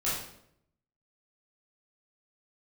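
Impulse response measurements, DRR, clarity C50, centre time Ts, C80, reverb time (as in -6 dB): -10.0 dB, 1.5 dB, 56 ms, 5.5 dB, 0.70 s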